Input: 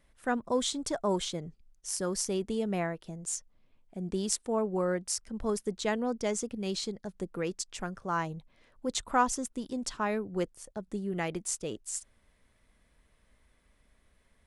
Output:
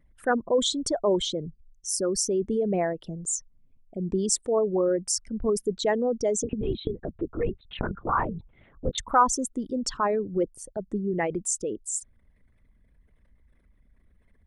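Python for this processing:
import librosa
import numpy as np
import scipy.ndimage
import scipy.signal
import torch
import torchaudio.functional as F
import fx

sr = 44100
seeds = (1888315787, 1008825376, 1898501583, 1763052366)

y = fx.envelope_sharpen(x, sr, power=2.0)
y = fx.lpc_vocoder(y, sr, seeds[0], excitation='whisper', order=8, at=(6.43, 8.98))
y = y * 10.0 ** (6.0 / 20.0)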